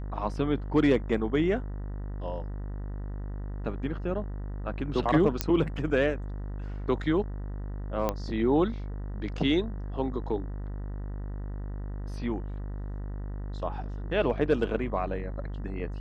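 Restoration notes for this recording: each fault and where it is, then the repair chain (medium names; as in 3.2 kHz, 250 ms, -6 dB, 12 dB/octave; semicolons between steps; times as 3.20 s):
buzz 50 Hz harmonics 39 -35 dBFS
5.41 s: pop -8 dBFS
8.09 s: pop -14 dBFS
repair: de-click; de-hum 50 Hz, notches 39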